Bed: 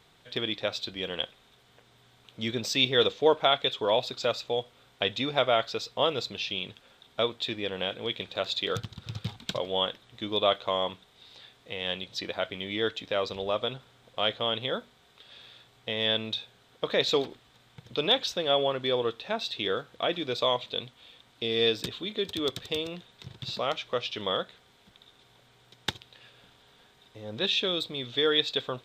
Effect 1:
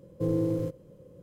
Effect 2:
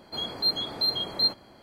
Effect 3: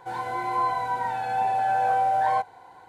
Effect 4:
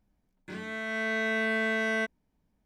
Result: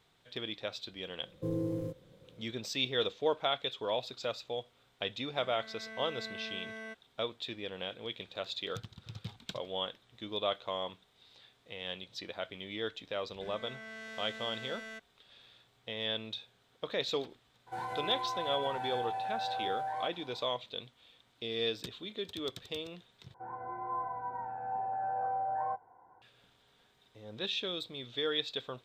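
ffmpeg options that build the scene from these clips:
-filter_complex "[4:a]asplit=2[a][b];[3:a]asplit=2[c][d];[0:a]volume=-8.5dB[e];[b]asoftclip=type=tanh:threshold=-33dB[f];[c]acompressor=threshold=-28dB:ratio=6:attack=3.2:release=140:knee=1:detection=peak[g];[d]lowpass=f=1.4k:w=0.5412,lowpass=f=1.4k:w=1.3066[h];[e]asplit=2[i][j];[i]atrim=end=23.344[k];[h]atrim=end=2.88,asetpts=PTS-STARTPTS,volume=-11.5dB[l];[j]atrim=start=26.216[m];[1:a]atrim=end=1.22,asetpts=PTS-STARTPTS,volume=-7dB,afade=t=in:d=0.004:c=hsin,afade=t=out:st=1.216:d=0.004:c=hsin,adelay=1220[n];[a]atrim=end=2.65,asetpts=PTS-STARTPTS,volume=-16dB,afade=t=in:d=0.004:c=hsin,afade=t=out:st=2.646:d=0.004:c=hsin,adelay=4880[o];[f]atrim=end=2.65,asetpts=PTS-STARTPTS,volume=-10.5dB,afade=t=in:d=0.004:c=hsin,afade=t=out:st=2.646:d=0.004:c=hsin,adelay=12930[p];[g]atrim=end=2.88,asetpts=PTS-STARTPTS,volume=-6dB,afade=t=in:d=0.02,afade=t=out:st=2.86:d=0.02,adelay=17660[q];[k][l]acrossfade=d=0.004:c1=hsin:c2=hsin[r];[r][m]acrossfade=d=0.004:c1=hsin:c2=hsin[s];[s][n][o][p][q]amix=inputs=5:normalize=0"

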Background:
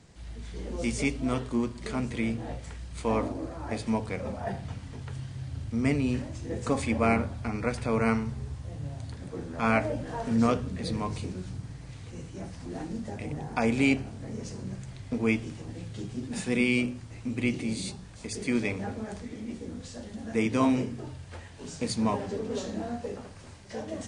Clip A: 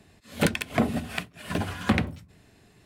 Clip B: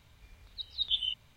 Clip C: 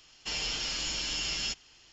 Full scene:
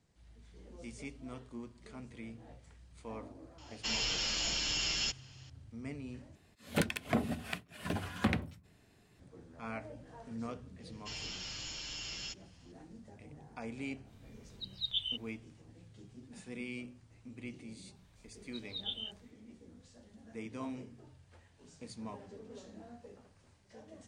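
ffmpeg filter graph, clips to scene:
-filter_complex "[3:a]asplit=2[a][b];[2:a]asplit=2[c][d];[0:a]volume=-17.5dB[e];[d]flanger=delay=22.5:depth=5:speed=1.6[f];[e]asplit=2[g][h];[g]atrim=end=6.354[i];[1:a]atrim=end=2.85,asetpts=PTS-STARTPTS,volume=-8dB[j];[h]atrim=start=9.196[k];[a]atrim=end=1.92,asetpts=PTS-STARTPTS,volume=-1dB,afade=t=in:d=0.004:c=hsin,afade=t=out:st=1.916:d=0.004:c=hsin,adelay=3580[l];[b]atrim=end=1.92,asetpts=PTS-STARTPTS,volume=-10dB,afade=t=in:d=0.004:c=hsin,afade=t=out:st=1.916:d=0.004:c=hsin,adelay=10800[m];[c]atrim=end=1.36,asetpts=PTS-STARTPTS,volume=-4.5dB,afade=t=in:d=0.1,afade=t=out:st=1.26:d=0.1,adelay=14030[n];[f]atrim=end=1.36,asetpts=PTS-STARTPTS,volume=-6.5dB,afade=t=in:d=0.004:c=hsin,afade=t=out:st=1.356:d=0.004:c=hsin,adelay=17950[o];[i][j]acrossfade=d=0.004:c1=hsin:c2=hsin[p];[p][k]acrossfade=d=0.004:c1=hsin:c2=hsin[q];[q][l][m][n][o]amix=inputs=5:normalize=0"

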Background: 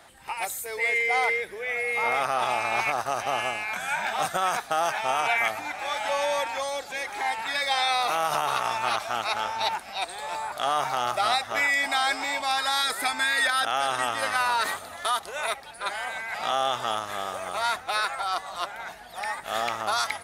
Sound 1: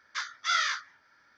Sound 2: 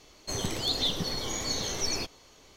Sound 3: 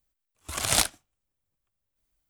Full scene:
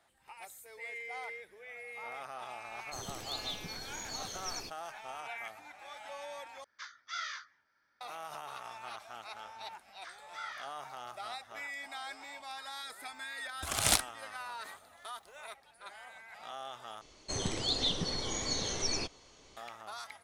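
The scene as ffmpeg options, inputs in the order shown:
-filter_complex "[2:a]asplit=2[a][b];[1:a]asplit=2[c][d];[0:a]volume=-18.5dB[e];[a]highshelf=f=5.1k:g=7[f];[d]acrossover=split=3000[g][h];[h]acompressor=threshold=-41dB:ratio=4:attack=1:release=60[i];[g][i]amix=inputs=2:normalize=0[j];[b]aresample=22050,aresample=44100[k];[e]asplit=3[l][m][n];[l]atrim=end=6.644[o];[c]atrim=end=1.37,asetpts=PTS-STARTPTS,volume=-12.5dB[p];[m]atrim=start=8.006:end=17.014[q];[k]atrim=end=2.56,asetpts=PTS-STARTPTS,volume=-3dB[r];[n]atrim=start=19.566[s];[f]atrim=end=2.56,asetpts=PTS-STARTPTS,volume=-13.5dB,afade=t=in:d=0.004:c=hsin,afade=t=out:st=2.556:d=0.004:c=hsin,adelay=2640[t];[j]atrim=end=1.37,asetpts=PTS-STARTPTS,volume=-15dB,afade=t=in:d=0.004:c=hsin,afade=t=out:st=1.366:d=0.004:c=hsin,adelay=9890[u];[3:a]atrim=end=2.29,asetpts=PTS-STARTPTS,volume=-4.5dB,afade=t=in:d=0.004:c=hsin,afade=t=out:st=2.286:d=0.004:c=hsin,adelay=13140[v];[o][p]acrossfade=d=0.004:c1=hsin:c2=hsin[w];[w][q]acrossfade=d=0.004:c1=hsin:c2=hsin[x];[x][r]acrossfade=d=0.004:c1=hsin:c2=hsin[y];[y][s]acrossfade=d=0.004:c1=hsin:c2=hsin[z];[z][t][u][v]amix=inputs=4:normalize=0"

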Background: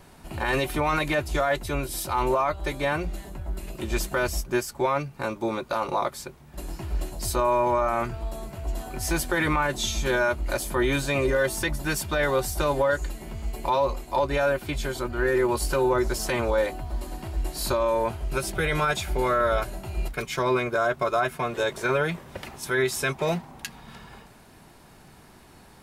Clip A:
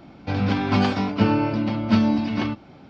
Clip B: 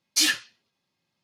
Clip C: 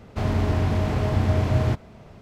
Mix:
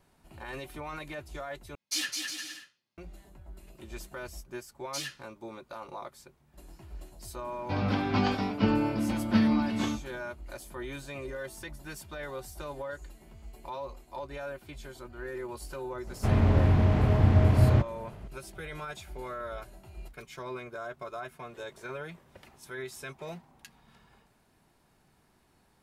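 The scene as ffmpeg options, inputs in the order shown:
-filter_complex "[2:a]asplit=2[a][b];[0:a]volume=-15.5dB[c];[a]aecho=1:1:210|357|459.9|531.9|582.4:0.631|0.398|0.251|0.158|0.1[d];[1:a]asplit=2[e][f];[f]adelay=23,volume=-11dB[g];[e][g]amix=inputs=2:normalize=0[h];[3:a]bass=f=250:g=3,treble=f=4k:g=-9[i];[c]asplit=2[j][k];[j]atrim=end=1.754[l];[d]atrim=end=1.23,asetpts=PTS-STARTPTS,volume=-10.5dB[m];[k]atrim=start=2.976[n];[b]atrim=end=1.23,asetpts=PTS-STARTPTS,volume=-16dB,afade=t=in:d=0.004:c=hsin,afade=t=out:st=1.226:d=0.004:c=hsin,adelay=210357S[o];[h]atrim=end=2.89,asetpts=PTS-STARTPTS,volume=-6.5dB,afade=t=in:d=0.004:c=hsin,afade=t=out:st=2.886:d=0.004:c=hsin,adelay=7420[p];[i]atrim=end=2.21,asetpts=PTS-STARTPTS,volume=-2.5dB,afade=t=in:d=0.004:c=hsin,afade=t=out:st=2.206:d=0.004:c=hsin,adelay=16070[q];[l][m]acrossfade=d=0.004:c1=hsin:c2=hsin[r];[r][n]acrossfade=d=0.004:c1=hsin:c2=hsin[s];[s][o][p][q]amix=inputs=4:normalize=0"

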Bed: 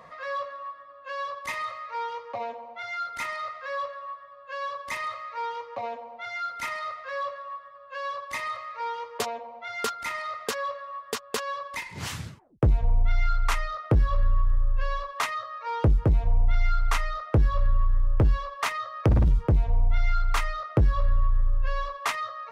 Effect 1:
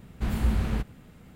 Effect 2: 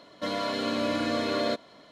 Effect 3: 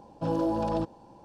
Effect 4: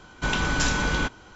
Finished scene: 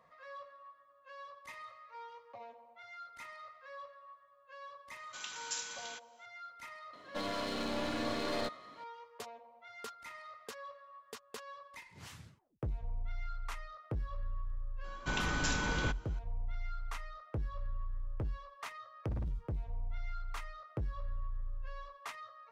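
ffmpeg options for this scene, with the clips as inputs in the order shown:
-filter_complex "[4:a]asplit=2[a][b];[0:a]volume=-17dB[c];[a]aderivative[d];[2:a]aeval=exprs='clip(val(0),-1,0.0178)':c=same[e];[d]atrim=end=1.35,asetpts=PTS-STARTPTS,volume=-8dB,afade=t=in:d=0.004:c=hsin,afade=t=out:st=1.346:d=0.004:c=hsin,adelay=4910[f];[e]atrim=end=1.91,asetpts=PTS-STARTPTS,volume=-5.5dB,afade=t=in:d=0.004:c=hsin,afade=t=out:st=1.906:d=0.004:c=hsin,adelay=6930[g];[b]atrim=end=1.35,asetpts=PTS-STARTPTS,volume=-9.5dB,afade=t=in:d=0.004:c=hsin,afade=t=out:st=1.346:d=0.004:c=hsin,adelay=14840[h];[c][f][g][h]amix=inputs=4:normalize=0"

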